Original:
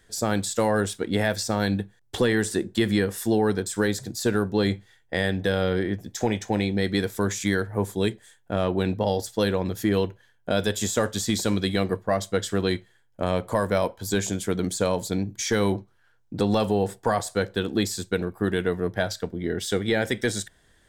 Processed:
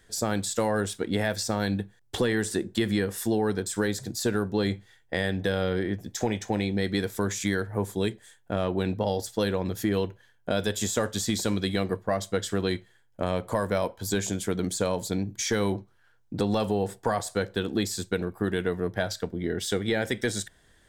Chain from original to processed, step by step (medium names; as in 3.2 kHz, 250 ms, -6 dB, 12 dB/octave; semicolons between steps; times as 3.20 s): compression 1.5:1, threshold -27 dBFS, peak gain reduction 4 dB